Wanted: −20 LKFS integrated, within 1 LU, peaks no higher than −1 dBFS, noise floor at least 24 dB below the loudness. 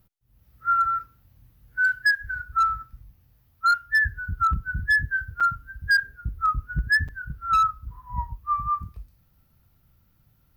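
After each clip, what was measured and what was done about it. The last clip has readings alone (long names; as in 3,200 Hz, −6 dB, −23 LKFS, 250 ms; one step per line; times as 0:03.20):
share of clipped samples 1.2%; peaks flattened at −15.5 dBFS; number of dropouts 2; longest dropout 6.0 ms; integrated loudness −24.0 LKFS; sample peak −15.5 dBFS; target loudness −20.0 LKFS
→ clipped peaks rebuilt −15.5 dBFS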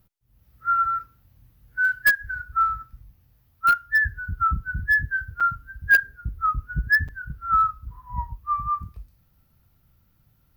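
share of clipped samples 0.0%; number of dropouts 2; longest dropout 6.0 ms
→ repair the gap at 0:05.40/0:07.08, 6 ms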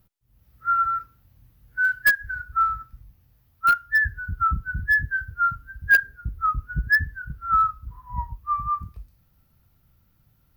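number of dropouts 0; integrated loudness −23.0 LKFS; sample peak −6.5 dBFS; target loudness −20.0 LKFS
→ level +3 dB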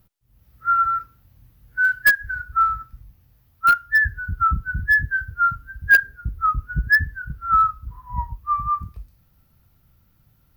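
integrated loudness −20.0 LKFS; sample peak −3.5 dBFS; background noise floor −61 dBFS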